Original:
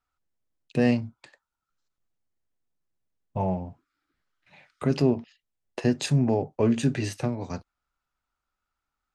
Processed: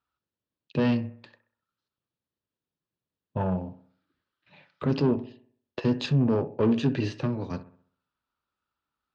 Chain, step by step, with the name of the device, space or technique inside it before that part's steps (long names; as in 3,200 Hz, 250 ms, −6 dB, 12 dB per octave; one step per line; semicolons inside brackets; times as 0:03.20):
analogue delay pedal into a guitar amplifier (bucket-brigade delay 64 ms, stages 1,024, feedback 44%, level −14.5 dB; tube saturation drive 20 dB, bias 0.5; loudspeaker in its box 89–4,400 Hz, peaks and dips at 740 Hz −7 dB, 1,400 Hz −3 dB, 2,100 Hz −8 dB)
level +4 dB